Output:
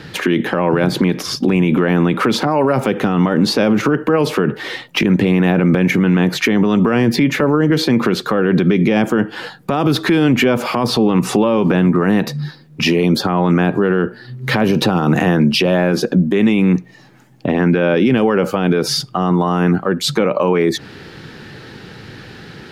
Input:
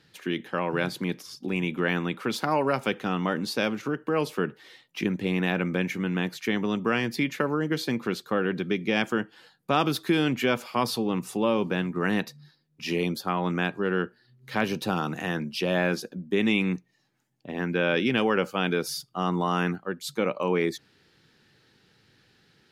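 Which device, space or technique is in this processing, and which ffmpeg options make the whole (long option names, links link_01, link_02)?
mastering chain: -filter_complex "[0:a]equalizer=frequency=1900:width_type=o:width=2.3:gain=3,acrossover=split=840|7600[link_01][link_02][link_03];[link_01]acompressor=threshold=-26dB:ratio=4[link_04];[link_02]acompressor=threshold=-33dB:ratio=4[link_05];[link_03]acompressor=threshold=-53dB:ratio=4[link_06];[link_04][link_05][link_06]amix=inputs=3:normalize=0,acompressor=threshold=-34dB:ratio=2,tiltshelf=frequency=1500:gain=5,alimiter=level_in=28dB:limit=-1dB:release=50:level=0:latency=1,volume=-4.5dB"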